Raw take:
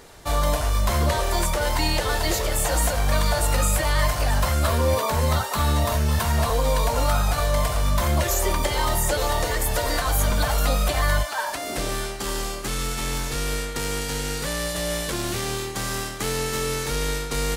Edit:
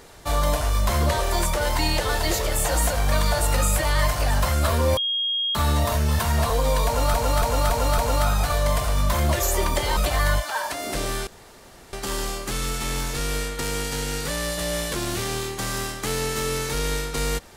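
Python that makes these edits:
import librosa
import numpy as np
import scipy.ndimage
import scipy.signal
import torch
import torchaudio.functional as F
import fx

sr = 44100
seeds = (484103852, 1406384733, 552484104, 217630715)

y = fx.edit(x, sr, fx.bleep(start_s=4.97, length_s=0.58, hz=3260.0, db=-21.5),
    fx.repeat(start_s=6.86, length_s=0.28, count=5),
    fx.cut(start_s=8.85, length_s=1.95),
    fx.insert_room_tone(at_s=12.1, length_s=0.66), tone=tone)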